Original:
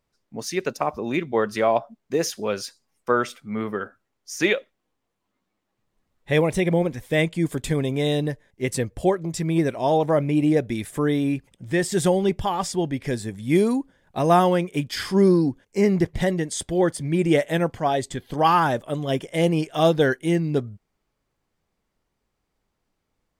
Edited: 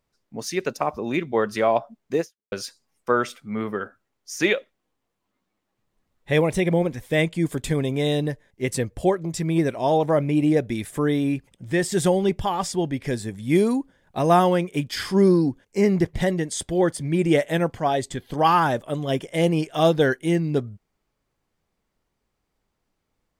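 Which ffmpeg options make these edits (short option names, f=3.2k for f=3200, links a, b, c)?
-filter_complex "[0:a]asplit=2[a][b];[a]atrim=end=2.52,asetpts=PTS-STARTPTS,afade=t=out:st=2.2:d=0.32:c=exp[c];[b]atrim=start=2.52,asetpts=PTS-STARTPTS,afade=t=in:d=0.004:c=hsin[d];[c][d]concat=n=2:v=0:a=1"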